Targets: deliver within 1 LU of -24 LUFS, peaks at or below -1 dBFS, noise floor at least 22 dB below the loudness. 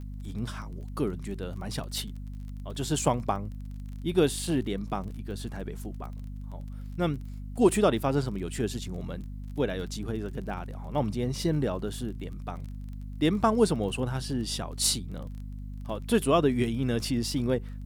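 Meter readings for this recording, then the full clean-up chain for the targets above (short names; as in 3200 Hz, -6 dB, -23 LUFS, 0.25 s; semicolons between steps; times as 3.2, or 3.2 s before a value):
ticks 26/s; hum 50 Hz; harmonics up to 250 Hz; hum level -36 dBFS; loudness -30.0 LUFS; peak -9.0 dBFS; loudness target -24.0 LUFS
-> de-click; notches 50/100/150/200/250 Hz; gain +6 dB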